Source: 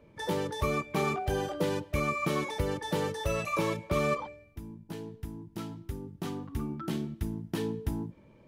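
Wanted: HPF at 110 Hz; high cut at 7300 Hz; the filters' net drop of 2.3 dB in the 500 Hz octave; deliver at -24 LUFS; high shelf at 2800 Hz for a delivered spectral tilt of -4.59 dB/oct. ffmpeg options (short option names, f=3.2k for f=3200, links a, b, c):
-af "highpass=110,lowpass=7.3k,equalizer=f=500:t=o:g=-3,highshelf=f=2.8k:g=7,volume=9dB"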